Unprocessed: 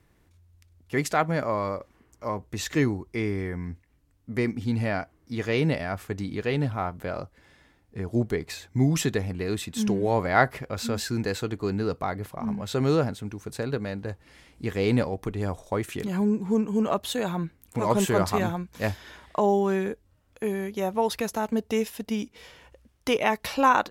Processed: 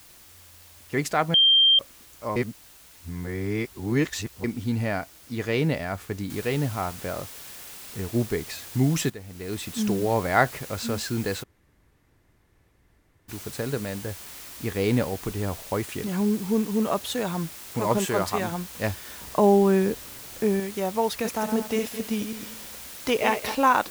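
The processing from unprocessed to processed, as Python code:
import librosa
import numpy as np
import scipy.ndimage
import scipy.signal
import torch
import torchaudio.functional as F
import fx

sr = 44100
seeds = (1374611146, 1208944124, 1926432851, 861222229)

y = fx.noise_floor_step(x, sr, seeds[0], at_s=6.3, before_db=-51, after_db=-42, tilt_db=0.0)
y = fx.low_shelf(y, sr, hz=260.0, db=-7.0, at=(17.98, 18.52))
y = fx.low_shelf(y, sr, hz=490.0, db=7.5, at=(19.21, 20.6))
y = fx.reverse_delay_fb(y, sr, ms=108, feedback_pct=49, wet_db=-7.0, at=(21.14, 23.55))
y = fx.edit(y, sr, fx.bleep(start_s=1.34, length_s=0.45, hz=3170.0, db=-14.0),
    fx.reverse_span(start_s=2.36, length_s=2.08),
    fx.fade_in_from(start_s=9.1, length_s=0.55, curve='qua', floor_db=-14.0),
    fx.room_tone_fill(start_s=11.43, length_s=1.86, crossfade_s=0.02), tone=tone)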